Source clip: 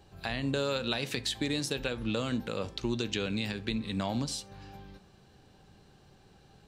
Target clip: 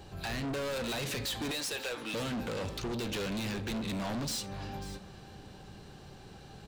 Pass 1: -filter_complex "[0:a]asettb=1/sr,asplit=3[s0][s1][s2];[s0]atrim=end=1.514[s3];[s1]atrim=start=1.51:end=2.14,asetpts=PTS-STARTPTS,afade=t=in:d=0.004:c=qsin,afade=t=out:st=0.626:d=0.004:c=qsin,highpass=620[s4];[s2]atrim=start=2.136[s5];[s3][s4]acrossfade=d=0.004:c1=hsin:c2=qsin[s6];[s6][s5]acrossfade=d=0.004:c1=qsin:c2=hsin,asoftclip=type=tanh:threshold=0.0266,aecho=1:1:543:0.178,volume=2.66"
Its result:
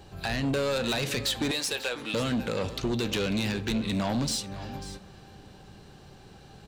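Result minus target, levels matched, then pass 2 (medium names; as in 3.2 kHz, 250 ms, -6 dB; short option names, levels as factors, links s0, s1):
saturation: distortion -6 dB
-filter_complex "[0:a]asettb=1/sr,asplit=3[s0][s1][s2];[s0]atrim=end=1.514[s3];[s1]atrim=start=1.51:end=2.14,asetpts=PTS-STARTPTS,afade=t=in:d=0.004:c=qsin,afade=t=out:st=0.626:d=0.004:c=qsin,highpass=620[s4];[s2]atrim=start=2.136[s5];[s3][s4]acrossfade=d=0.004:c1=hsin:c2=qsin[s6];[s6][s5]acrossfade=d=0.004:c1=qsin:c2=hsin,asoftclip=type=tanh:threshold=0.00841,aecho=1:1:543:0.178,volume=2.66"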